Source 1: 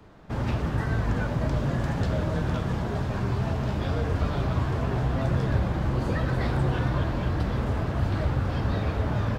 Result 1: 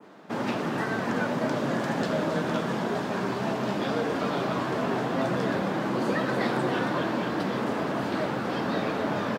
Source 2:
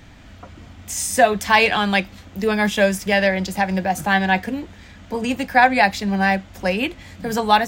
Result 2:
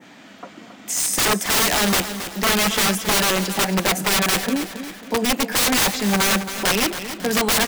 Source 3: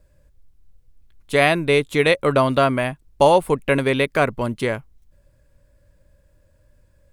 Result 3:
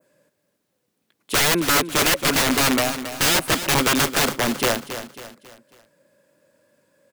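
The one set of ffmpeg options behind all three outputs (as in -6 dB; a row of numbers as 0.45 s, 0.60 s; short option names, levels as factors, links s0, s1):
-af "highpass=f=200:w=0.5412,highpass=f=200:w=1.3066,adynamicequalizer=threshold=0.0158:dfrequency=4200:dqfactor=0.74:tfrequency=4200:tqfactor=0.74:attack=5:release=100:ratio=0.375:range=3:mode=cutabove:tftype=bell,aeval=exprs='(mod(7.08*val(0)+1,2)-1)/7.08':c=same,aecho=1:1:273|546|819|1092:0.282|0.118|0.0497|0.0209,volume=1.58"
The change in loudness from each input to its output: -1.0 LU, 0.0 LU, 0.0 LU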